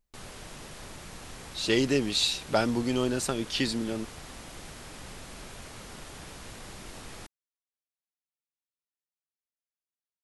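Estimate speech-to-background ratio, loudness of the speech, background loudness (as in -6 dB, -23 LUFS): 16.0 dB, -28.0 LUFS, -44.0 LUFS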